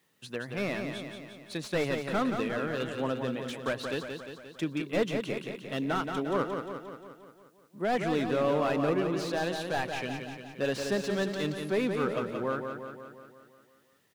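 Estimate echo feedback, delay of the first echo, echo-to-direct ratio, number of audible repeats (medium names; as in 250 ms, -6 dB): 59%, 176 ms, -4.0 dB, 7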